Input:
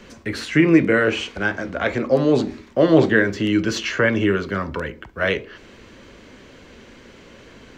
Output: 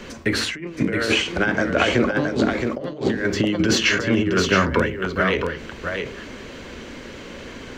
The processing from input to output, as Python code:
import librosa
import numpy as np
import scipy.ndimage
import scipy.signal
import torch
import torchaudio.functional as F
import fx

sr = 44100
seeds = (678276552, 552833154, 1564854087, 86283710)

p1 = fx.over_compress(x, sr, threshold_db=-22.0, ratio=-0.5)
p2 = fx.hum_notches(p1, sr, base_hz=50, count=4)
p3 = p2 + fx.echo_single(p2, sr, ms=670, db=-5.5, dry=0)
p4 = fx.end_taper(p3, sr, db_per_s=100.0)
y = F.gain(torch.from_numpy(p4), 3.0).numpy()